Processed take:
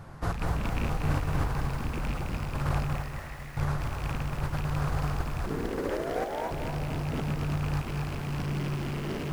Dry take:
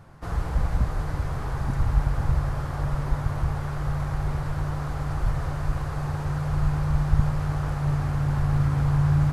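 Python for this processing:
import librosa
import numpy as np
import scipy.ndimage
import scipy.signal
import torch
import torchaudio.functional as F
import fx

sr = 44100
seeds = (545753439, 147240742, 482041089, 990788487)

y = fx.rattle_buzz(x, sr, strikes_db=-22.0, level_db=-24.0)
y = 10.0 ** (-21.5 / 20.0) * (np.abs((y / 10.0 ** (-21.5 / 20.0) + 3.0) % 4.0 - 2.0) - 1.0)
y = fx.over_compress(y, sr, threshold_db=-30.0, ratio=-0.5)
y = fx.doubler(y, sr, ms=34.0, db=-3, at=(0.52, 1.2))
y = fx.ladder_bandpass(y, sr, hz=2000.0, resonance_pct=80, at=(2.96, 3.57))
y = fx.ring_mod(y, sr, carrier_hz=fx.line((5.45, 270.0), (6.5, 850.0)), at=(5.45, 6.5), fade=0.02)
y = fx.echo_diffused(y, sr, ms=556, feedback_pct=43, wet_db=-11.5)
y = fx.echo_crushed(y, sr, ms=237, feedback_pct=35, bits=8, wet_db=-5)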